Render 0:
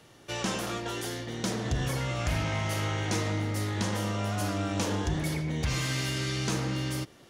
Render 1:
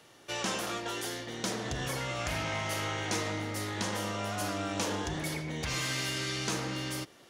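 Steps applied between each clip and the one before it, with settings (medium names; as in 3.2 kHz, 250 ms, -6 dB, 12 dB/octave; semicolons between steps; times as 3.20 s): bass shelf 220 Hz -11 dB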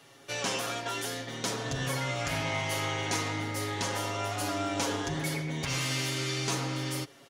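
comb 7.3 ms, depth 77%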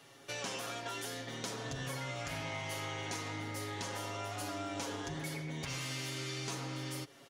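compression 2.5:1, threshold -37 dBFS, peak gain reduction 7.5 dB; trim -2.5 dB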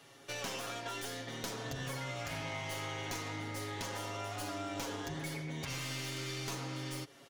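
tracing distortion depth 0.056 ms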